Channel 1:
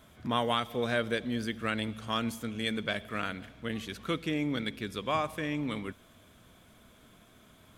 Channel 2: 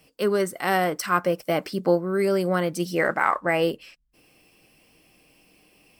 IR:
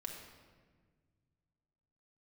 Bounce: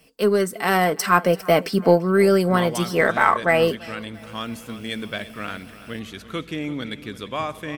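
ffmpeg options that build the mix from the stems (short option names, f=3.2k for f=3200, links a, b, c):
-filter_complex "[0:a]adelay=2250,volume=-2.5dB,asplit=2[a][b];[b]volume=-15.5dB[c];[1:a]aecho=1:1:4.5:0.39,volume=2.5dB,asplit=2[d][e];[e]volume=-22.5dB[f];[c][f]amix=inputs=2:normalize=0,aecho=0:1:339|678|1017|1356|1695|2034:1|0.41|0.168|0.0689|0.0283|0.0116[g];[a][d][g]amix=inputs=3:normalize=0,aeval=exprs='0.708*(cos(1*acos(clip(val(0)/0.708,-1,1)))-cos(1*PI/2))+0.00562*(cos(6*acos(clip(val(0)/0.708,-1,1)))-cos(6*PI/2))+0.00794*(cos(7*acos(clip(val(0)/0.708,-1,1)))-cos(7*PI/2))':c=same,dynaudnorm=f=140:g=13:m=6dB"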